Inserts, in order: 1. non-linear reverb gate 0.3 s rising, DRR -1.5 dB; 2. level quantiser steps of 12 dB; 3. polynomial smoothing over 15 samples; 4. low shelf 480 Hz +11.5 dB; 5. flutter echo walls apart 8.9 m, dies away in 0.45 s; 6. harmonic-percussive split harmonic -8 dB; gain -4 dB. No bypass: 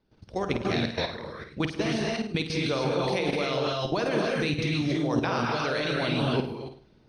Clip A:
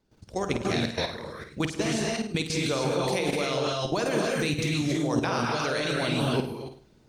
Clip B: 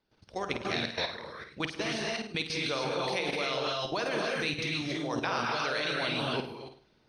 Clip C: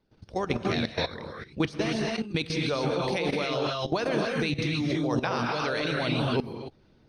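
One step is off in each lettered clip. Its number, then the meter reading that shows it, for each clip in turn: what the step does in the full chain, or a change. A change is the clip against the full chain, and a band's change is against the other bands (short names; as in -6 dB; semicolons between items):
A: 3, 8 kHz band +9.0 dB; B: 4, 125 Hz band -8.5 dB; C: 5, crest factor change +1.5 dB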